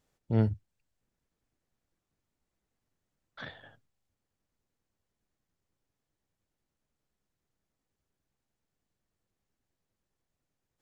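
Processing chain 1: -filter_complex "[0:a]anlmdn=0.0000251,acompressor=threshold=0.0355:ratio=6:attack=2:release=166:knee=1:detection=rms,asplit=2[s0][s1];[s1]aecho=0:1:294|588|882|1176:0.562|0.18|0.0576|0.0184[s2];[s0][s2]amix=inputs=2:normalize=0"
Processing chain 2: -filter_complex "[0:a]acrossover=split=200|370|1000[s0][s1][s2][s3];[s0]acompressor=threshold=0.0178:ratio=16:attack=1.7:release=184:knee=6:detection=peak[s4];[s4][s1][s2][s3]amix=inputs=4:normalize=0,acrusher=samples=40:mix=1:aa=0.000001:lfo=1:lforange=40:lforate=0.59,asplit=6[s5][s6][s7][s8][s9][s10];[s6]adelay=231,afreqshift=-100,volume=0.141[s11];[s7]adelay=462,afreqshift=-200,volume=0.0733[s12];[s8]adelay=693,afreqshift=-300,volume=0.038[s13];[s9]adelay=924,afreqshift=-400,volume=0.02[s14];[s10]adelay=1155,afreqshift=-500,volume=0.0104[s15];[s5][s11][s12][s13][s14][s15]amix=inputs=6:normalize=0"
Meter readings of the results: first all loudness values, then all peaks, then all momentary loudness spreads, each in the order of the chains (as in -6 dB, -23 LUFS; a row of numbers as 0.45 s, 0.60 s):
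-42.5 LUFS, -37.0 LUFS; -25.0 dBFS, -21.5 dBFS; 21 LU, 23 LU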